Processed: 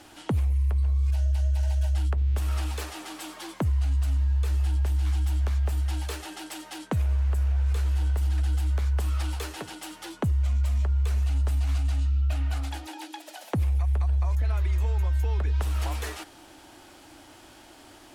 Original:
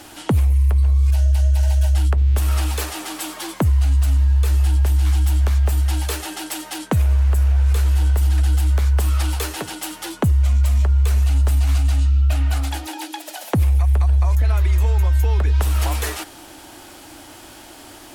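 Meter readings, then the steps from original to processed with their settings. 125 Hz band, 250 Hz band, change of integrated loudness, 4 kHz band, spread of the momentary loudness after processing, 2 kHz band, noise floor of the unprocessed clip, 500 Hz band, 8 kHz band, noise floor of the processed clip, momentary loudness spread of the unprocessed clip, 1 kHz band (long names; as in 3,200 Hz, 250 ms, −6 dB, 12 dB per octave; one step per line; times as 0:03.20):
−8.5 dB, −8.5 dB, −8.0 dB, −9.5 dB, 12 LU, −9.0 dB, −41 dBFS, −8.5 dB, −12.0 dB, −51 dBFS, 11 LU, −8.5 dB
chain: high-shelf EQ 10,000 Hz −10 dB
level −8.5 dB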